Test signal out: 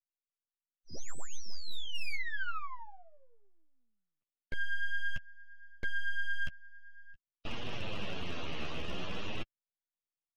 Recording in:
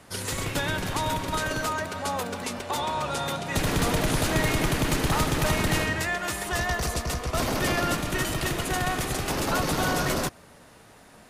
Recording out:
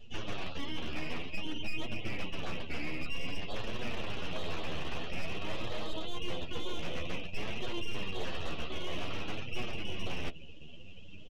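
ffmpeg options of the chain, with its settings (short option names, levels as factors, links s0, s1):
-filter_complex "[0:a]aresample=11025,aresample=44100,highpass=f=1400:t=q:w=4.9,areverse,acompressor=threshold=0.0224:ratio=12,areverse,aecho=1:1:1.6:0.33,aresample=16000,aeval=exprs='abs(val(0))':c=same,aresample=44100,afftdn=nr=18:nf=-48,acrossover=split=2800[s0][s1];[s1]acompressor=threshold=0.00126:ratio=4:attack=1:release=60[s2];[s0][s2]amix=inputs=2:normalize=0,volume=39.8,asoftclip=hard,volume=0.0251,flanger=delay=8.1:depth=5.2:regen=11:speed=0.52:shape=triangular,volume=2.51"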